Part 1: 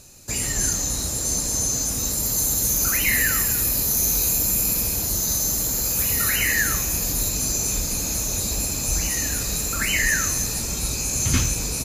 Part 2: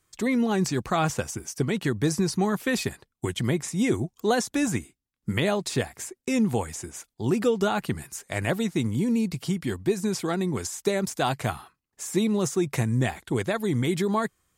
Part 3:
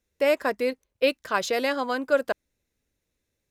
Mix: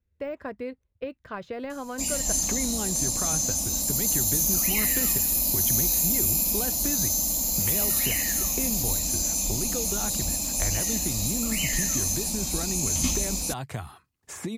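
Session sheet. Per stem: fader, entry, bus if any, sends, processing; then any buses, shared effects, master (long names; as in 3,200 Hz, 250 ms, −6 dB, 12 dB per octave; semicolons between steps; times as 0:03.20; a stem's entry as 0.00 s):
−2.0 dB, 1.70 s, no bus, no send, phaser with its sweep stopped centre 410 Hz, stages 6
−6.0 dB, 2.30 s, bus A, no send, pitch vibrato 1 Hz 6.5 cents; multiband upward and downward compressor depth 70%
−8.0 dB, 0.00 s, bus A, no send, de-essing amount 85%; bass and treble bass +9 dB, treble −13 dB
bus A: 0.0 dB, parametric band 85 Hz +11 dB 0.99 octaves; downward compressor, threshold −29 dBFS, peak gain reduction 7 dB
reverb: not used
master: no processing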